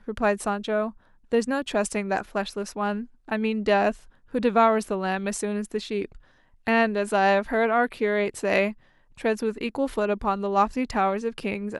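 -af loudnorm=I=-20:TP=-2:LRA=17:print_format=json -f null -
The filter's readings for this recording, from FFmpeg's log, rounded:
"input_i" : "-25.5",
"input_tp" : "-7.9",
"input_lra" : "2.0",
"input_thresh" : "-35.8",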